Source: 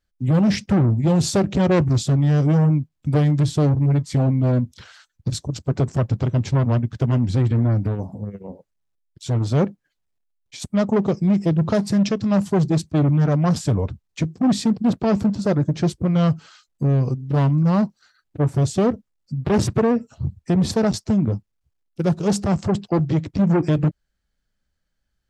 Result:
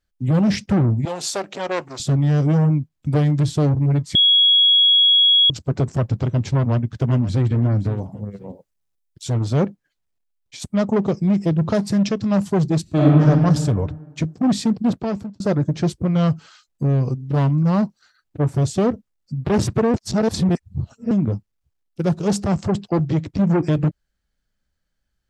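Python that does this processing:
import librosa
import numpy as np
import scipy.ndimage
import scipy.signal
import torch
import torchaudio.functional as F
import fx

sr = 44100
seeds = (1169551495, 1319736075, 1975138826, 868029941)

y = fx.highpass(x, sr, hz=590.0, slope=12, at=(1.05, 2.0))
y = fx.echo_throw(y, sr, start_s=6.56, length_s=0.94, ms=520, feedback_pct=20, wet_db=-14.5)
y = fx.high_shelf(y, sr, hz=fx.line((8.19, 7800.0), (9.35, 5100.0)), db=6.5, at=(8.19, 9.35), fade=0.02)
y = fx.reverb_throw(y, sr, start_s=12.82, length_s=0.42, rt60_s=1.6, drr_db=-5.5)
y = fx.edit(y, sr, fx.bleep(start_s=4.15, length_s=1.35, hz=3330.0, db=-10.5),
    fx.fade_out_span(start_s=14.86, length_s=0.54),
    fx.reverse_span(start_s=19.94, length_s=1.17), tone=tone)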